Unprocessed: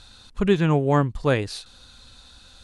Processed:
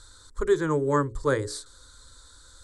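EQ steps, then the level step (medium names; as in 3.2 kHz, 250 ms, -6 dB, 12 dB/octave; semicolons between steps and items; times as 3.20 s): peaking EQ 7.8 kHz +11.5 dB 0.3 oct; hum notches 60/120/180/240/300/360/420/480/540 Hz; static phaser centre 720 Hz, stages 6; 0.0 dB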